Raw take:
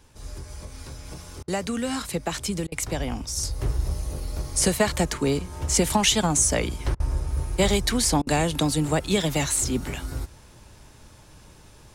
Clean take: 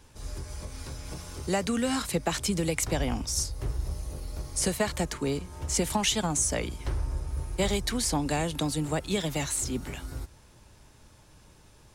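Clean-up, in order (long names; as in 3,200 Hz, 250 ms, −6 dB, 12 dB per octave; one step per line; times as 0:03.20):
repair the gap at 0:01.43/0:02.67/0:06.95/0:08.22, 48 ms
level correction −6 dB, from 0:03.43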